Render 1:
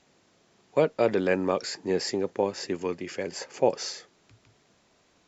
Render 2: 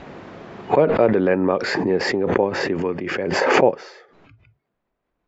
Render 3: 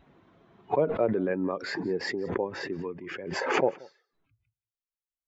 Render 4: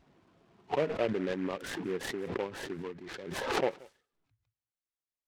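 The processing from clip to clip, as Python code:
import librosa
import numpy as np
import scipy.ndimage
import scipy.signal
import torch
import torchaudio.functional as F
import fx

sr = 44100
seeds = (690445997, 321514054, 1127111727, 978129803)

y1 = fx.noise_reduce_blind(x, sr, reduce_db=19)
y1 = scipy.signal.sosfilt(scipy.signal.butter(2, 1800.0, 'lowpass', fs=sr, output='sos'), y1)
y1 = fx.pre_swell(y1, sr, db_per_s=28.0)
y1 = y1 * 10.0 ** (6.0 / 20.0)
y2 = fx.bin_expand(y1, sr, power=1.5)
y2 = y2 + 10.0 ** (-23.5 / 20.0) * np.pad(y2, (int(179 * sr / 1000.0), 0))[:len(y2)]
y2 = y2 * 10.0 ** (-7.5 / 20.0)
y3 = fx.noise_mod_delay(y2, sr, seeds[0], noise_hz=1500.0, depth_ms=0.066)
y3 = y3 * 10.0 ** (-5.0 / 20.0)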